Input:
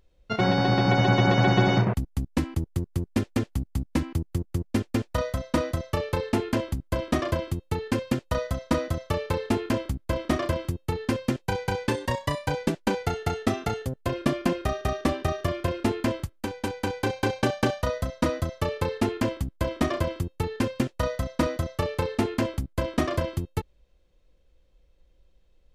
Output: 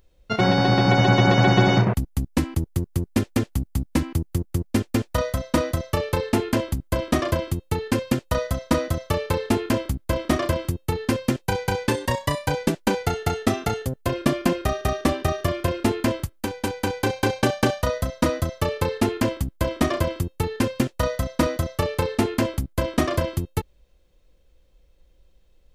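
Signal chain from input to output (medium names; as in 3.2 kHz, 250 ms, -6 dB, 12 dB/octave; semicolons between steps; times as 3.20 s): treble shelf 8.4 kHz +8 dB; trim +3.5 dB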